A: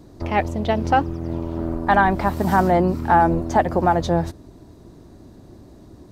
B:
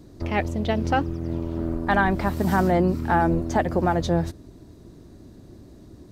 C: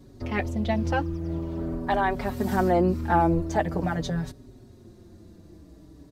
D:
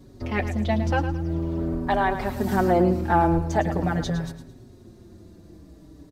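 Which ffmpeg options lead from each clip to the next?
ffmpeg -i in.wav -af "equalizer=frequency=860:width_type=o:width=1.1:gain=-6,volume=-1dB" out.wav
ffmpeg -i in.wav -filter_complex "[0:a]asplit=2[link_01][link_02];[link_02]adelay=4.9,afreqshift=-0.46[link_03];[link_01][link_03]amix=inputs=2:normalize=1" out.wav
ffmpeg -i in.wav -af "aecho=1:1:109|218|327|436:0.299|0.0985|0.0325|0.0107,volume=1.5dB" out.wav

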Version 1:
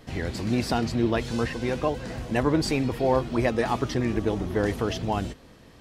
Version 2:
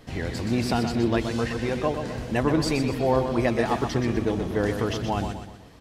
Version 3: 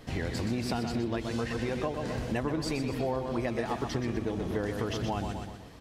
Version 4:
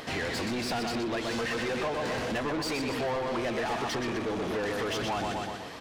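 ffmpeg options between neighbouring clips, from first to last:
ffmpeg -i in.wav -af "aecho=1:1:124|248|372|496|620:0.422|0.181|0.078|0.0335|0.0144" out.wav
ffmpeg -i in.wav -af "acompressor=threshold=-28dB:ratio=6" out.wav
ffmpeg -i in.wav -filter_complex "[0:a]asplit=2[link_01][link_02];[link_02]highpass=frequency=720:poles=1,volume=27dB,asoftclip=type=tanh:threshold=-16.5dB[link_03];[link_01][link_03]amix=inputs=2:normalize=0,lowpass=frequency=4500:poles=1,volume=-6dB,acompressor=mode=upward:threshold=-37dB:ratio=2.5,volume=-6.5dB" out.wav

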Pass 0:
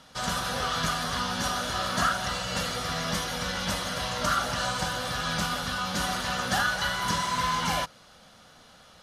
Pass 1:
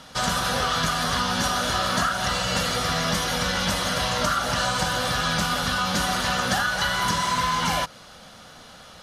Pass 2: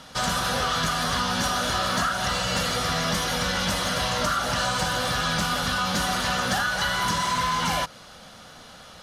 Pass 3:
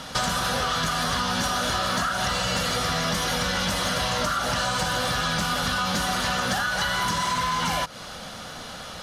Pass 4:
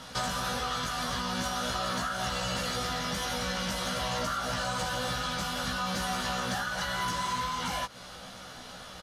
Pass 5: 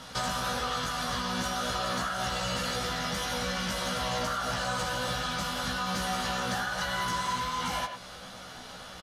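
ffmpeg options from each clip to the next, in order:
ffmpeg -i in.wav -af "acompressor=threshold=-28dB:ratio=6,volume=8dB" out.wav
ffmpeg -i in.wav -af "asoftclip=type=tanh:threshold=-15.5dB" out.wav
ffmpeg -i in.wav -af "acompressor=threshold=-31dB:ratio=6,volume=8dB" out.wav
ffmpeg -i in.wav -filter_complex "[0:a]asplit=2[link_01][link_02];[link_02]adelay=16,volume=-3dB[link_03];[link_01][link_03]amix=inputs=2:normalize=0,volume=-9dB" out.wav
ffmpeg -i in.wav -filter_complex "[0:a]asplit=2[link_01][link_02];[link_02]adelay=100,highpass=300,lowpass=3400,asoftclip=type=hard:threshold=-28.5dB,volume=-6dB[link_03];[link_01][link_03]amix=inputs=2:normalize=0" out.wav

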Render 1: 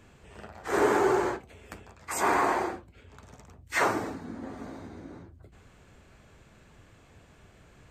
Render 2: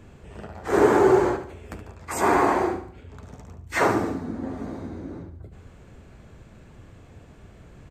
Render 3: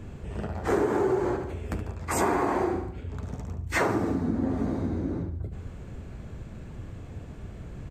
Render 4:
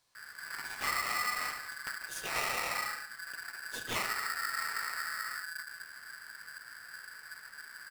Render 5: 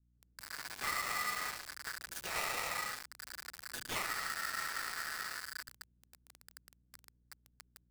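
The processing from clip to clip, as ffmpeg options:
ffmpeg -i in.wav -filter_complex "[0:a]tiltshelf=frequency=700:gain=4.5,asplit=2[link_01][link_02];[link_02]aecho=0:1:72|144|216|288:0.282|0.121|0.0521|0.0224[link_03];[link_01][link_03]amix=inputs=2:normalize=0,volume=5dB" out.wav
ffmpeg -i in.wav -af "lowshelf=frequency=350:gain=7,acompressor=threshold=-23dB:ratio=10,volume=1.5dB" out.wav
ffmpeg -i in.wav -filter_complex "[0:a]acrossover=split=2300[link_01][link_02];[link_01]adelay=150[link_03];[link_03][link_02]amix=inputs=2:normalize=0,aeval=exprs='val(0)*sgn(sin(2*PI*1600*n/s))':channel_layout=same,volume=-9dB" out.wav
ffmpeg -i in.wav -filter_complex "[0:a]aeval=exprs='val(0)+0.000447*(sin(2*PI*60*n/s)+sin(2*PI*2*60*n/s)/2+sin(2*PI*3*60*n/s)/3+sin(2*PI*4*60*n/s)/4+sin(2*PI*5*60*n/s)/5)':channel_layout=same,acrossover=split=300[link_01][link_02];[link_02]acrusher=bits=5:mix=0:aa=0.000001[link_03];[link_01][link_03]amix=inputs=2:normalize=0,volume=-4dB" out.wav

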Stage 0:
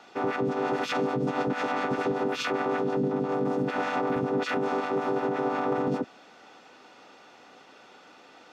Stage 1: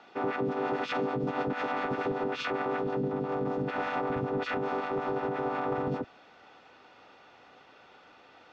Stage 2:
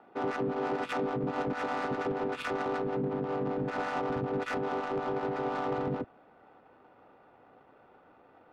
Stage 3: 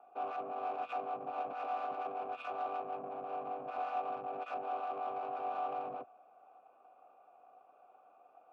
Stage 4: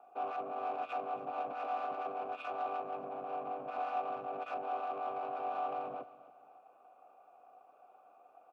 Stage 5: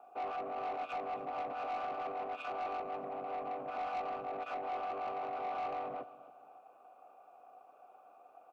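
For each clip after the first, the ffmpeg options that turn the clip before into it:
ffmpeg -i in.wav -af "lowpass=4000,asubboost=boost=5.5:cutoff=88,volume=-2.5dB" out.wav
ffmpeg -i in.wav -filter_complex "[0:a]asplit=2[link_01][link_02];[link_02]asoftclip=type=tanh:threshold=-34.5dB,volume=-6.5dB[link_03];[link_01][link_03]amix=inputs=2:normalize=0,adynamicsmooth=sensitivity=4:basefreq=1000,volume=-2.5dB" out.wav
ffmpeg -i in.wav -filter_complex "[0:a]aeval=exprs='(tanh(35.5*val(0)+0.5)-tanh(0.5))/35.5':channel_layout=same,asplit=3[link_01][link_02][link_03];[link_01]bandpass=frequency=730:width_type=q:width=8,volume=0dB[link_04];[link_02]bandpass=frequency=1090:width_type=q:width=8,volume=-6dB[link_05];[link_03]bandpass=frequency=2440:width_type=q:width=8,volume=-9dB[link_06];[link_04][link_05][link_06]amix=inputs=3:normalize=0,volume=6.5dB" out.wav
ffmpeg -i in.wav -af "aecho=1:1:272|544|816:0.141|0.0466|0.0154,volume=1dB" out.wav
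ffmpeg -i in.wav -af "asoftclip=type=tanh:threshold=-35dB,volume=2dB" out.wav

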